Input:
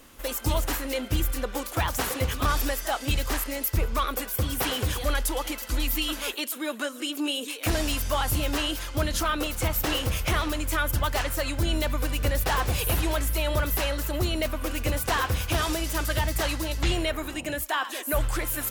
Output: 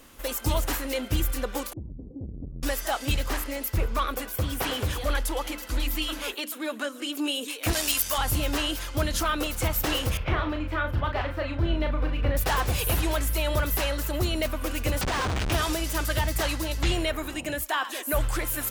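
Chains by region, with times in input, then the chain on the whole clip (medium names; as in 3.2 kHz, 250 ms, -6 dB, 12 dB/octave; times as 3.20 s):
1.73–2.63 s: compression, threshold -27 dBFS + inverse Chebyshev low-pass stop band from 1.9 kHz, stop band 80 dB + transformer saturation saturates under 170 Hz
3.16–7.10 s: peaking EQ 8.1 kHz -3 dB 2.4 oct + hum notches 60/120/180/240/300/360/420 Hz + loudspeaker Doppler distortion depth 0.23 ms
7.73–8.18 s: tilt EQ +3 dB/octave + transformer saturation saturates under 1.3 kHz
10.17–12.37 s: distance through air 370 m + doubling 36 ms -5.5 dB
15.01–15.52 s: Schmitt trigger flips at -33 dBFS + decimation joined by straight lines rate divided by 3×
whole clip: none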